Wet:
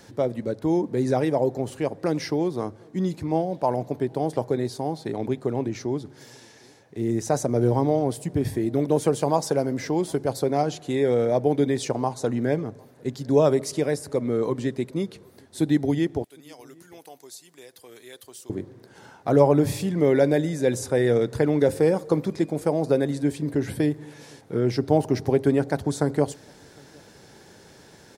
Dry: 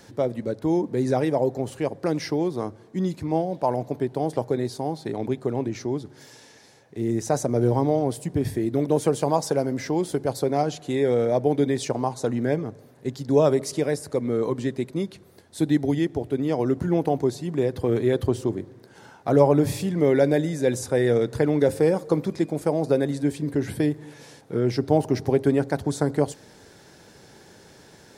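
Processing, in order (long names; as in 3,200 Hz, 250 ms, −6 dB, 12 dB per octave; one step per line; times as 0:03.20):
0:16.24–0:18.50: first difference
slap from a distant wall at 130 metres, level −29 dB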